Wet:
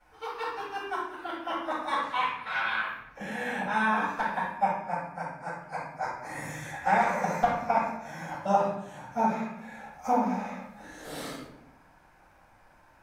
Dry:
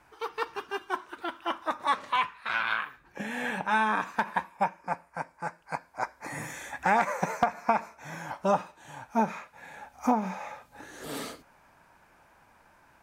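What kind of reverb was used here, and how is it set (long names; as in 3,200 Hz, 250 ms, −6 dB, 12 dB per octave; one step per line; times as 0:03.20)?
rectangular room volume 200 cubic metres, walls mixed, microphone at 6.3 metres
level −16 dB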